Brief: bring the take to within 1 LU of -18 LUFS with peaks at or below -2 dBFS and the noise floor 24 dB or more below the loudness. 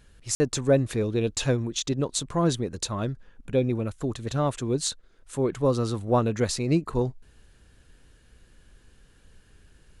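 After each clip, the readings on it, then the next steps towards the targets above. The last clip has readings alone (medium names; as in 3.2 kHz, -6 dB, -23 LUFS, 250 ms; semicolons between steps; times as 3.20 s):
dropouts 1; longest dropout 50 ms; loudness -26.5 LUFS; peak level -9.5 dBFS; loudness target -18.0 LUFS
-> interpolate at 0.35 s, 50 ms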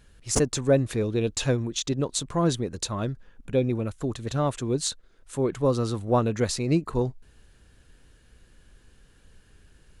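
dropouts 0; loudness -26.5 LUFS; peak level -7.5 dBFS; loudness target -18.0 LUFS
-> trim +8.5 dB; peak limiter -2 dBFS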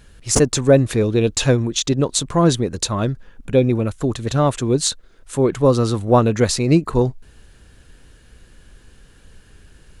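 loudness -18.0 LUFS; peak level -2.0 dBFS; noise floor -49 dBFS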